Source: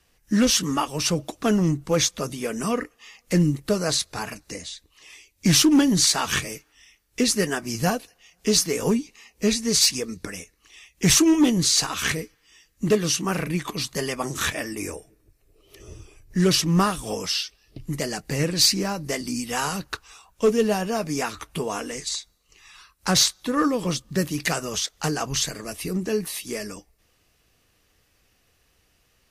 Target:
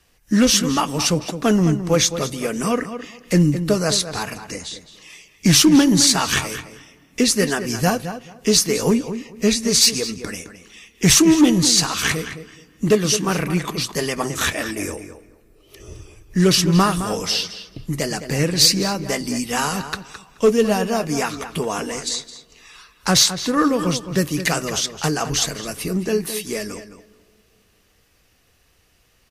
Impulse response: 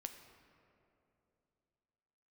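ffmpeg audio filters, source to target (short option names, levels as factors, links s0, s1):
-filter_complex "[0:a]asplit=2[s0][s1];[s1]adelay=214,lowpass=f=3500:p=1,volume=0.299,asplit=2[s2][s3];[s3]adelay=214,lowpass=f=3500:p=1,volume=0.19,asplit=2[s4][s5];[s5]adelay=214,lowpass=f=3500:p=1,volume=0.19[s6];[s0][s2][s4][s6]amix=inputs=4:normalize=0,asplit=2[s7][s8];[1:a]atrim=start_sample=2205[s9];[s8][s9]afir=irnorm=-1:irlink=0,volume=0.251[s10];[s7][s10]amix=inputs=2:normalize=0,volume=1.41"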